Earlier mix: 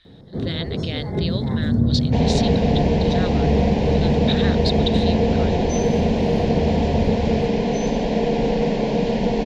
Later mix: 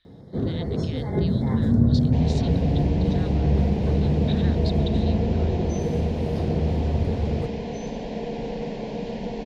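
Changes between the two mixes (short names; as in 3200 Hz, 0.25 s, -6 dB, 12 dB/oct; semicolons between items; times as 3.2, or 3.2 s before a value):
speech -12.0 dB; second sound -10.5 dB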